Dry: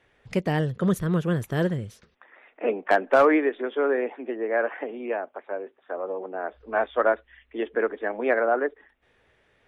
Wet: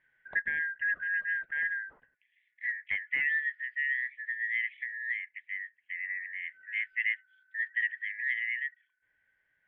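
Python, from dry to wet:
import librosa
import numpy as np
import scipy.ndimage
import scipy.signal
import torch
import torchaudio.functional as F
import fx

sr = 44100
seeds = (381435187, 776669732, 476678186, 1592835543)

y = fx.band_shuffle(x, sr, order='4123')
y = scipy.signal.sosfilt(scipy.signal.bessel(6, 1100.0, 'lowpass', norm='mag', fs=sr, output='sos'), y)
y = fx.rider(y, sr, range_db=3, speed_s=0.5)
y = y * 10.0 ** (2.5 / 20.0)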